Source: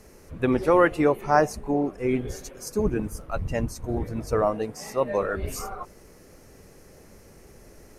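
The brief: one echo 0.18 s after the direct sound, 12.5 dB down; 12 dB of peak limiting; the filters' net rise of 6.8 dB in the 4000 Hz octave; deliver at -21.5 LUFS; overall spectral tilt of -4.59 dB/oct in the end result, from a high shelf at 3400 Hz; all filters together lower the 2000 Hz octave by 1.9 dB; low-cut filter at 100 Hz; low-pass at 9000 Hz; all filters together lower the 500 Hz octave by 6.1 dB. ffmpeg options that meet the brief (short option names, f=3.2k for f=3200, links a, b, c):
-af "highpass=100,lowpass=9k,equalizer=f=500:t=o:g=-7.5,equalizer=f=2k:t=o:g=-4.5,highshelf=f=3.4k:g=3.5,equalizer=f=4k:t=o:g=8,alimiter=limit=-19.5dB:level=0:latency=1,aecho=1:1:180:0.237,volume=10dB"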